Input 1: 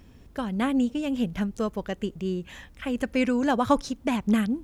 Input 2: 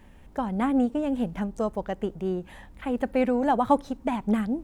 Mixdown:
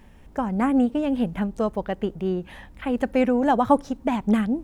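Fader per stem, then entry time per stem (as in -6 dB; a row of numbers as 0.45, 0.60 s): -8.5, +1.0 dB; 0.00, 0.00 s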